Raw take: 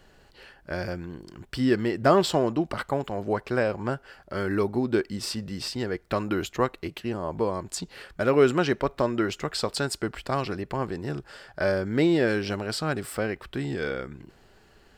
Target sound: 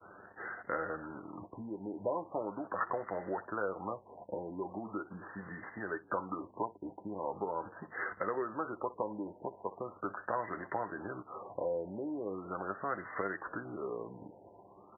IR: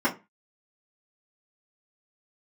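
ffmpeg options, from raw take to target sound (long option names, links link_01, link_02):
-filter_complex "[0:a]acompressor=threshold=-38dB:ratio=5,highshelf=frequency=4000:gain=6,acrusher=bits=8:mix=0:aa=0.000001,acrossover=split=470|3000[link_01][link_02][link_03];[link_01]acompressor=threshold=-48dB:ratio=2.5[link_04];[link_04][link_02][link_03]amix=inputs=3:normalize=0,asetrate=39289,aresample=44100,atempo=1.12246,lowshelf=frequency=420:gain=-9.5,aeval=exprs='val(0)+0.000316*(sin(2*PI*50*n/s)+sin(2*PI*2*50*n/s)/2+sin(2*PI*3*50*n/s)/3+sin(2*PI*4*50*n/s)/4+sin(2*PI*5*50*n/s)/5)':channel_layout=same,highpass=140,lowpass=6200,asplit=2[link_05][link_06];[link_06]aecho=0:1:10|62:0.422|0.126[link_07];[link_05][link_07]amix=inputs=2:normalize=0,agate=range=-33dB:threshold=-54dB:ratio=3:detection=peak,asplit=2[link_08][link_09];[link_09]asplit=3[link_10][link_11][link_12];[link_10]adelay=260,afreqshift=60,volume=-21.5dB[link_13];[link_11]adelay=520,afreqshift=120,volume=-28.1dB[link_14];[link_12]adelay=780,afreqshift=180,volume=-34.6dB[link_15];[link_13][link_14][link_15]amix=inputs=3:normalize=0[link_16];[link_08][link_16]amix=inputs=2:normalize=0,afftfilt=real='re*lt(b*sr/1024,980*pow(2100/980,0.5+0.5*sin(2*PI*0.4*pts/sr)))':imag='im*lt(b*sr/1024,980*pow(2100/980,0.5+0.5*sin(2*PI*0.4*pts/sr)))':win_size=1024:overlap=0.75,volume=9dB"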